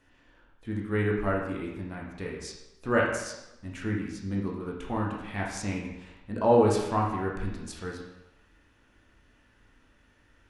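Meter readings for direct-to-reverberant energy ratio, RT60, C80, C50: −2.5 dB, 0.95 s, 5.5 dB, 3.0 dB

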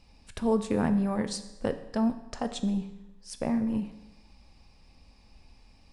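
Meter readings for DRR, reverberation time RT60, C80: 9.0 dB, 0.95 s, 14.0 dB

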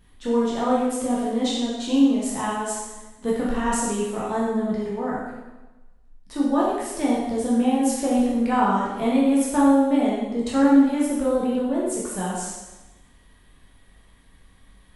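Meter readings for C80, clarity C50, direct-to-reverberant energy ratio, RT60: 2.5 dB, −0.5 dB, −6.5 dB, 1.1 s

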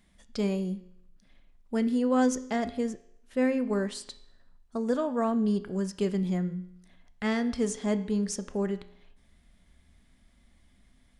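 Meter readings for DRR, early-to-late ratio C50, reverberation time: 10.0 dB, 14.5 dB, 0.70 s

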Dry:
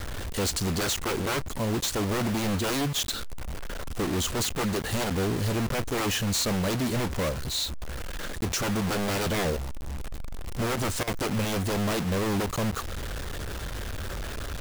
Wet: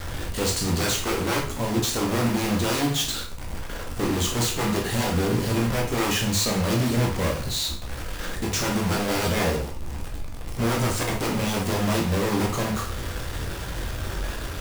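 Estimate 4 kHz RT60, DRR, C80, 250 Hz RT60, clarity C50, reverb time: 0.45 s, −1.0 dB, 11.5 dB, 0.45 s, 6.0 dB, 0.45 s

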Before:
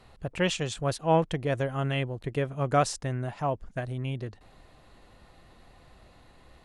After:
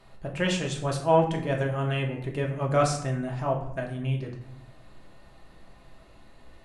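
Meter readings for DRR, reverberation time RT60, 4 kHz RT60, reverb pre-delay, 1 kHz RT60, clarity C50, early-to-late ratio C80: 0.0 dB, 0.70 s, 0.45 s, 3 ms, 0.70 s, 7.5 dB, 10.5 dB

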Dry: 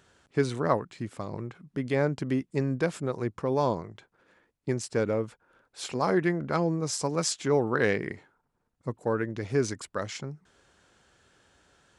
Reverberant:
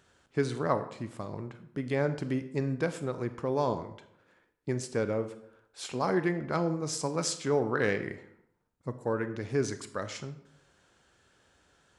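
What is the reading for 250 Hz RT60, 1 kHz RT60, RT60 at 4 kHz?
0.75 s, 0.75 s, 0.50 s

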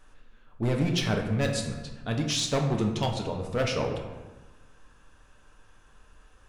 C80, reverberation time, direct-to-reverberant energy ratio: 7.5 dB, 1.1 s, 2.0 dB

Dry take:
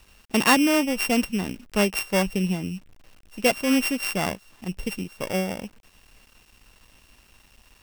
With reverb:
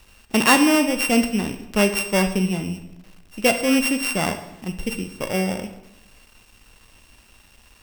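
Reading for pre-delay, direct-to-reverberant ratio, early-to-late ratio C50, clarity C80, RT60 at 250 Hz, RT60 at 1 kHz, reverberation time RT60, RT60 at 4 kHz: 12 ms, 7.5 dB, 10.0 dB, 12.5 dB, 1.1 s, 0.85 s, 0.90 s, 0.75 s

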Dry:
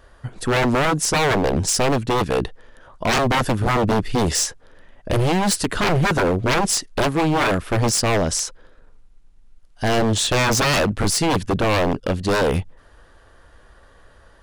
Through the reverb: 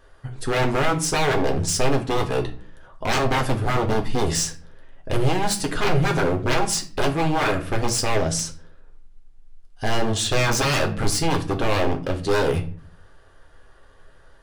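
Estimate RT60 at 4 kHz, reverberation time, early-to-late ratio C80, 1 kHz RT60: 0.30 s, 0.45 s, 18.5 dB, 0.40 s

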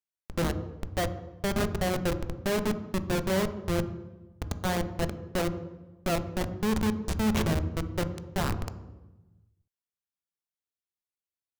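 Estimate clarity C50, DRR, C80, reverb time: 12.5 dB, 10.0 dB, 14.5 dB, 1.1 s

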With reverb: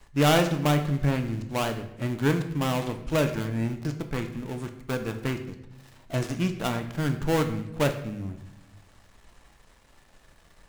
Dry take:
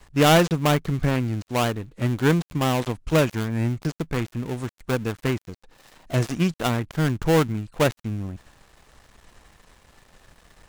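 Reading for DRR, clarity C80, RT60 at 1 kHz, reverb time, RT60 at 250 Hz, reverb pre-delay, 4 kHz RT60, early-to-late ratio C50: 6.0 dB, 12.5 dB, 0.75 s, 0.90 s, 1.4 s, 3 ms, 0.65 s, 10.5 dB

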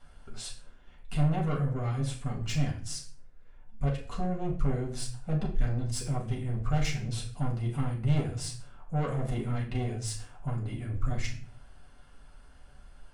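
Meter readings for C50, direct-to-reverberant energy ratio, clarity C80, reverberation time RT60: 8.5 dB, −2.5 dB, 13.5 dB, 0.45 s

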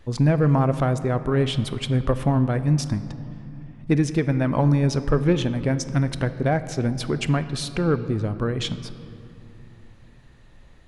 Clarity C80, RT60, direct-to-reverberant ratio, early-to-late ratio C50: 13.5 dB, 2.9 s, 11.5 dB, 12.5 dB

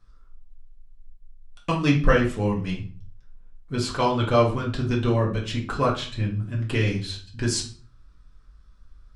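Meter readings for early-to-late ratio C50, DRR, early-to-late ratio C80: 8.5 dB, −3.5 dB, 14.0 dB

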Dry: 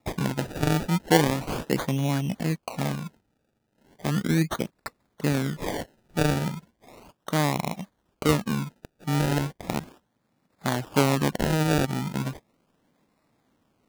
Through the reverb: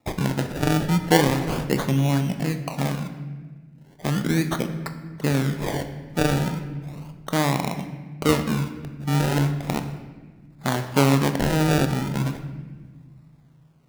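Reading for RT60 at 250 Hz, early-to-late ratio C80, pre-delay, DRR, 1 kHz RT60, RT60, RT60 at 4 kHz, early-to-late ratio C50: 2.4 s, 11.0 dB, 22 ms, 7.5 dB, 1.3 s, 1.4 s, 1.0 s, 9.5 dB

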